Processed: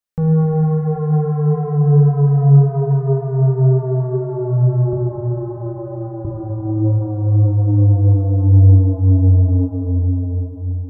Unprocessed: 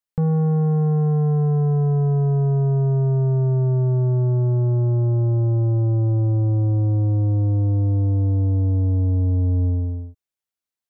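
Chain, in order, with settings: 4.93–6.25 s: high-pass 470 Hz 12 dB/octave; reverberation RT60 4.4 s, pre-delay 4 ms, DRR -3.5 dB

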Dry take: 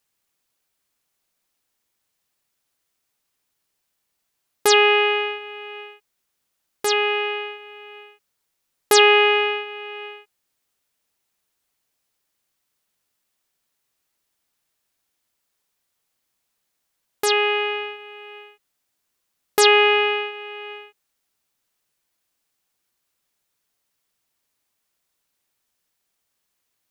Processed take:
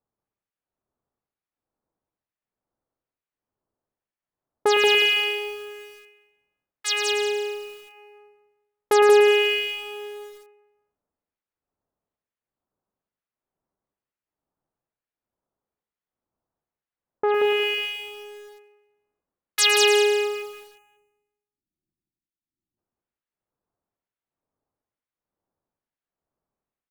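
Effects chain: level-controlled noise filter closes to 930 Hz, open at -19 dBFS; in parallel at -7 dB: short-mantissa float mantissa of 2-bit; on the sum: time-frequency box 20.24–22.77 s, 380–5900 Hz -20 dB; harmonic tremolo 1.1 Hz, depth 100%, crossover 1.6 kHz; on a send: feedback delay 181 ms, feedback 29%, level -3 dB; on the sum: bit-crushed delay 109 ms, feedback 55%, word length 7-bit, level -7.5 dB; trim -2.5 dB

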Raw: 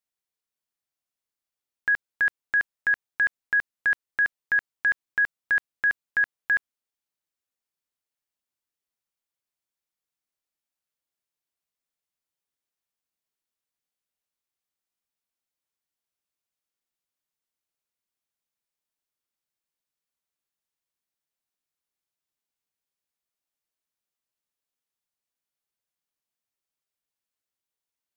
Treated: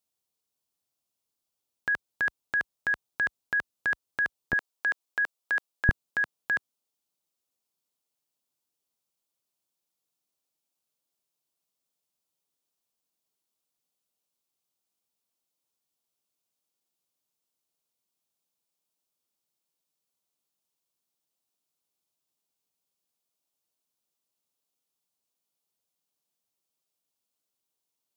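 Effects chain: high-pass 46 Hz 12 dB/octave, from 4.53 s 380 Hz, from 5.89 s 110 Hz; peaking EQ 1.8 kHz -11 dB 0.92 oct; trim +5.5 dB

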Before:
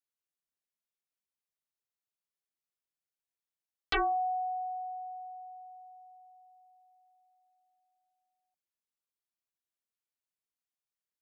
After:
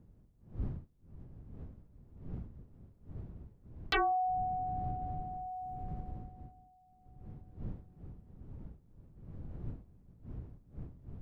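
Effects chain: wind noise 120 Hz -45 dBFS; 3.96–6.11 s: upward compressor, threshold -33 dBFS; trim -1 dB

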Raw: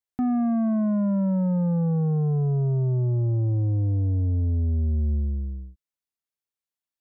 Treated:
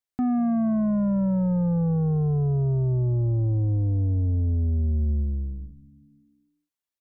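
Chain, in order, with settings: frequency-shifting echo 187 ms, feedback 61%, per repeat -72 Hz, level -22 dB

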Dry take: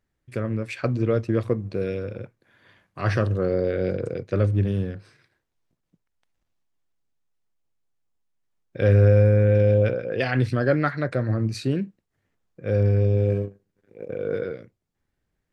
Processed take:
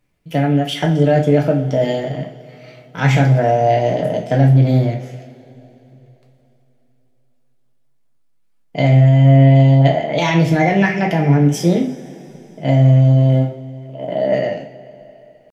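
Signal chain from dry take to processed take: pitch shift +4.5 st; peak limiter -14.5 dBFS, peak gain reduction 7.5 dB; two-slope reverb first 0.39 s, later 3.6 s, from -21 dB, DRR 0 dB; trim +7 dB

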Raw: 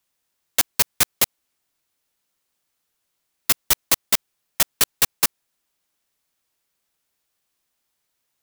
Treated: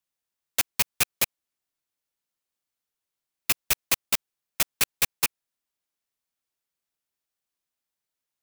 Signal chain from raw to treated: rattle on loud lows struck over -42 dBFS, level -8 dBFS; upward expansion 1.5:1, over -27 dBFS; trim -5 dB

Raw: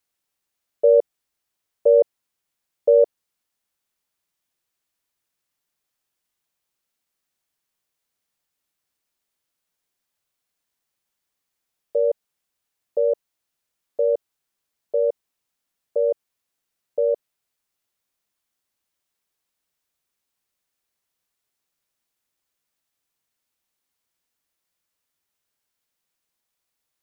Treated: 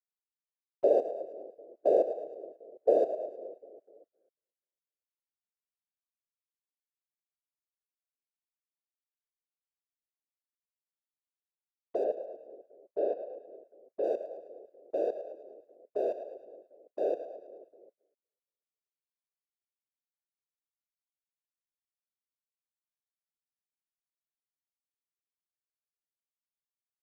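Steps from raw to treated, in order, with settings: local Wiener filter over 15 samples; 12.04–14.04 s: distance through air 240 m; two-band feedback delay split 470 Hz, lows 249 ms, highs 108 ms, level -12 dB; gate -50 dBFS, range -32 dB; bass shelf 280 Hz -8 dB; whisper effect; trim -8 dB

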